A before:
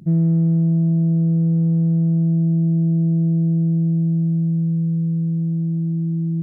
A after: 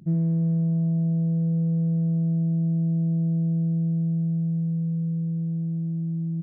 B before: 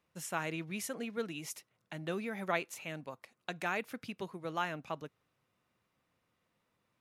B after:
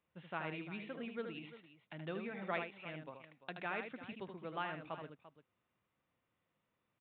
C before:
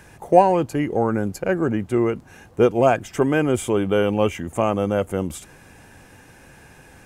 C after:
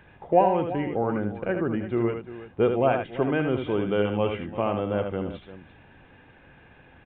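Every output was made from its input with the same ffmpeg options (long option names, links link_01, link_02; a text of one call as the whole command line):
ffmpeg -i in.wav -af "aecho=1:1:77|344:0.473|0.188,aresample=8000,aresample=44100,volume=-6dB" out.wav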